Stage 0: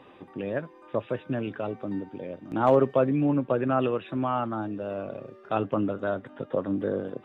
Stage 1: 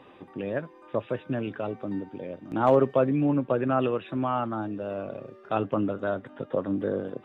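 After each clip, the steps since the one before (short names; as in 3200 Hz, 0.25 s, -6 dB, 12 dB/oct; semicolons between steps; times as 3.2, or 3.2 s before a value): nothing audible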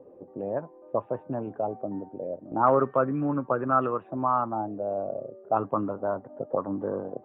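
envelope low-pass 500–1300 Hz up, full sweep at -20.5 dBFS; gain -4 dB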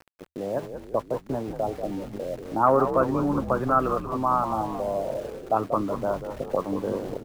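sample gate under -42.5 dBFS; frequency-shifting echo 0.186 s, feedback 58%, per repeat -81 Hz, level -9 dB; gain +1.5 dB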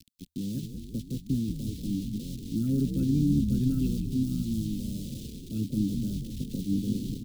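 elliptic band-stop 240–3500 Hz, stop band 80 dB; gain +6.5 dB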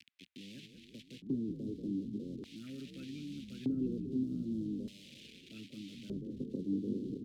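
LFO band-pass square 0.41 Hz 410–2300 Hz; three-band squash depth 40%; gain +3.5 dB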